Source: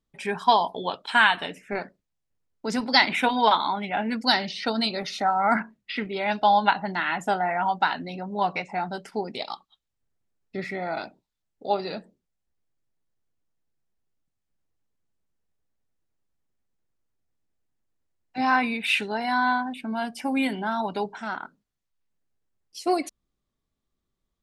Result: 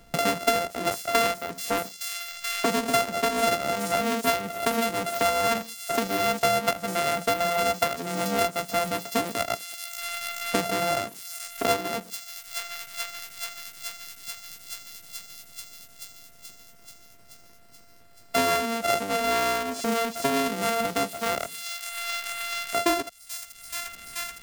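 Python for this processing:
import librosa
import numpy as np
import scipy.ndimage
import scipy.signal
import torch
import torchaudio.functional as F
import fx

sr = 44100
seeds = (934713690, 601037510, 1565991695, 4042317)

p1 = np.r_[np.sort(x[:len(x) // 64 * 64].reshape(-1, 64), axis=1).ravel(), x[len(x) // 64 * 64:]]
p2 = p1 + fx.echo_wet_highpass(p1, sr, ms=431, feedback_pct=70, hz=5500.0, wet_db=-8.5, dry=0)
y = fx.band_squash(p2, sr, depth_pct=100)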